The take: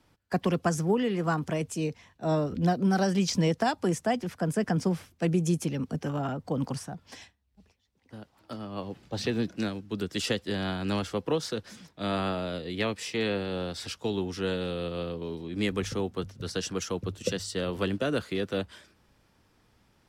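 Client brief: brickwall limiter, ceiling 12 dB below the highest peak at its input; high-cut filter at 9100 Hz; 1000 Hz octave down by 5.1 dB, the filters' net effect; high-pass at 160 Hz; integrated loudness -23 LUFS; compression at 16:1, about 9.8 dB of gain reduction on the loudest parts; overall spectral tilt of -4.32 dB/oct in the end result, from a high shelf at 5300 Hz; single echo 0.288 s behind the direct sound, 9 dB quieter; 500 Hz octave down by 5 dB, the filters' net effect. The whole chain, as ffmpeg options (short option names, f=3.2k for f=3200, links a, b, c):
-af "highpass=160,lowpass=9.1k,equalizer=f=500:t=o:g=-5,equalizer=f=1k:t=o:g=-5.5,highshelf=f=5.3k:g=7,acompressor=threshold=-33dB:ratio=16,alimiter=level_in=8dB:limit=-24dB:level=0:latency=1,volume=-8dB,aecho=1:1:288:0.355,volume=18dB"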